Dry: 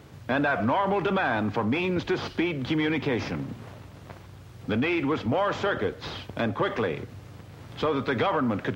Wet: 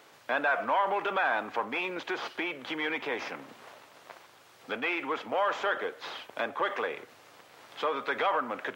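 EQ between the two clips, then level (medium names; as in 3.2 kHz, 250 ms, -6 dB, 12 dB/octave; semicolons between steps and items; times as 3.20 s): high-pass 620 Hz 12 dB/octave; dynamic bell 4.7 kHz, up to -6 dB, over -52 dBFS, Q 1.3; 0.0 dB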